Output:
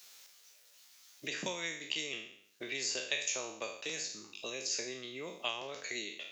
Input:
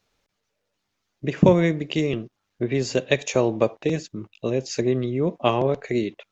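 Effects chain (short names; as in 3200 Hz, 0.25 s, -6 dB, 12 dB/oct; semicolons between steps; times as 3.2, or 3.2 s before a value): spectral trails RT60 0.52 s; differentiator; three-band squash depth 70%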